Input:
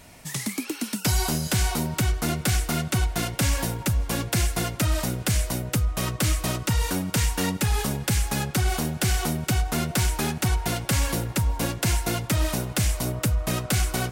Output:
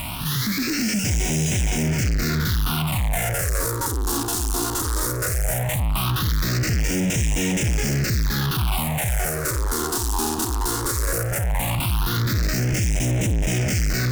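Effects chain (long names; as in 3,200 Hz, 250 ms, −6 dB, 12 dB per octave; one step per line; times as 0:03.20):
spectrum averaged block by block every 50 ms
fuzz pedal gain 52 dB, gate −51 dBFS
all-pass phaser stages 6, 0.17 Hz, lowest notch 150–1,200 Hz
level −6.5 dB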